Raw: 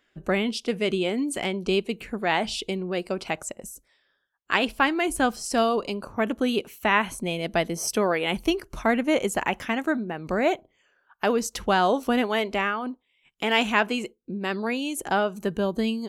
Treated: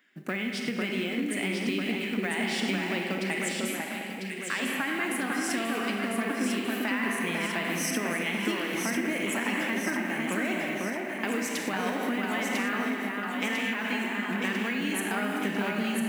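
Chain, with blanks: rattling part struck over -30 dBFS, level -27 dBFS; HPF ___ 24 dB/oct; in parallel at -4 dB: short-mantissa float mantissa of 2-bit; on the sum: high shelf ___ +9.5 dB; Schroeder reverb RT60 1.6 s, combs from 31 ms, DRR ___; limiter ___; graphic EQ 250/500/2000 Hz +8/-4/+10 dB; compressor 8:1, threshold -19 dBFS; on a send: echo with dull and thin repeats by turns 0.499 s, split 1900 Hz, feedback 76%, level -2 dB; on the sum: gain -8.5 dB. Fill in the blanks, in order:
150 Hz, 10000 Hz, 4.5 dB, -9.5 dBFS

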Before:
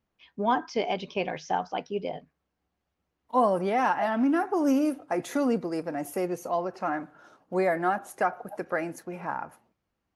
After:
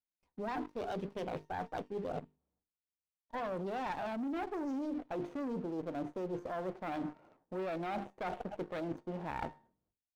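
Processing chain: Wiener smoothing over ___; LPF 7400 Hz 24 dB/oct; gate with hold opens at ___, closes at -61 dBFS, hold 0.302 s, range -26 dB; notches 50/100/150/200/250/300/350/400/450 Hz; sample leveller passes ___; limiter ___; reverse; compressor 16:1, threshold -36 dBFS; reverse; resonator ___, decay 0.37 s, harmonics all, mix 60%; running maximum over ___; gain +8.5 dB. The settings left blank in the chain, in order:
25 samples, -59 dBFS, 2, -19.5 dBFS, 910 Hz, 9 samples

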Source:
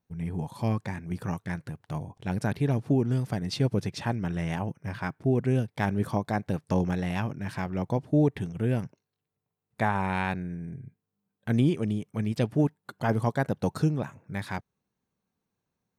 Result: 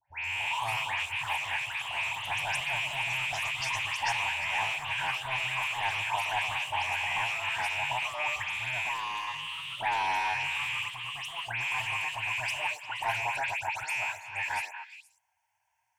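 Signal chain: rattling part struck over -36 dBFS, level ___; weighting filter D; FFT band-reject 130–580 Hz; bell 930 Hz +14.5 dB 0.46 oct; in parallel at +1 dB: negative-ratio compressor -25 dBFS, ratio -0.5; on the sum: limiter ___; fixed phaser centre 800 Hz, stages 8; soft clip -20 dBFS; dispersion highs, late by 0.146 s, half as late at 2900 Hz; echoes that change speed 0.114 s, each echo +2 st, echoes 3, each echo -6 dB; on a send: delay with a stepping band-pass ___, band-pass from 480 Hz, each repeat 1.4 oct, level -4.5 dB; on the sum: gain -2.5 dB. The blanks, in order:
-20 dBFS, -12 dBFS, 0.118 s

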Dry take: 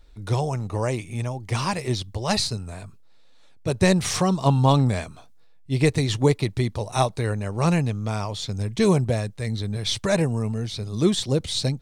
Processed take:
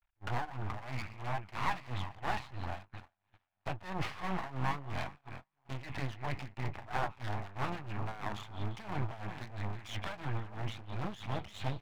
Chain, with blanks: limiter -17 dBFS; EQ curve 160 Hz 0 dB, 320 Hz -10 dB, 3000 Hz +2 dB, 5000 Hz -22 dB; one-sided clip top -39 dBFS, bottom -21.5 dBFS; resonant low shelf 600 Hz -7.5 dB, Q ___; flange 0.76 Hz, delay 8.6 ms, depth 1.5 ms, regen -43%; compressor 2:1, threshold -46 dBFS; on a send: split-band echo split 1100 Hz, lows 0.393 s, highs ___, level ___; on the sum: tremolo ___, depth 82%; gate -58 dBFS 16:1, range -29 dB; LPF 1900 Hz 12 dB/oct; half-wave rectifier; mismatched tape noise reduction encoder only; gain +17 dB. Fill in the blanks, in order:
3, 0.172 s, -12.5 dB, 3 Hz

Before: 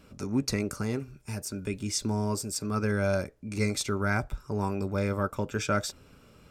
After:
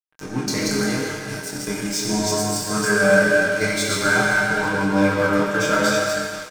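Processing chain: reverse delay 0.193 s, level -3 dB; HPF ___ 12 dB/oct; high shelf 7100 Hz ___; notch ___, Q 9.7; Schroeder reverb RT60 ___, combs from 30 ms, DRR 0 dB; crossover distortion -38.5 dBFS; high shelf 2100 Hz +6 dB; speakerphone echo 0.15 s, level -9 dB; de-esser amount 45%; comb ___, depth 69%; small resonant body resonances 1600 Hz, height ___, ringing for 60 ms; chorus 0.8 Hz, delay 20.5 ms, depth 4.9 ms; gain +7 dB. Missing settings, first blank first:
120 Hz, -6.5 dB, 2600 Hz, 2.7 s, 6.5 ms, 16 dB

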